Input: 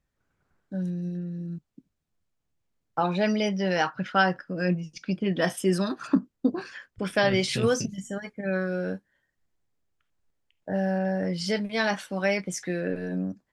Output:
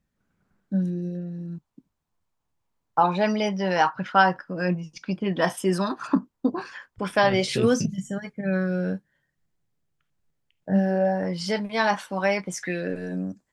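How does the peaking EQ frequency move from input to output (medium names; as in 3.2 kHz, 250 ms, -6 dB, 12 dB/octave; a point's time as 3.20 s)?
peaking EQ +10.5 dB 0.69 oct
0.74 s 200 Hz
1.41 s 960 Hz
7.27 s 960 Hz
7.88 s 150 Hz
10.69 s 150 Hz
11.17 s 960 Hz
12.54 s 960 Hz
12.94 s 7.7 kHz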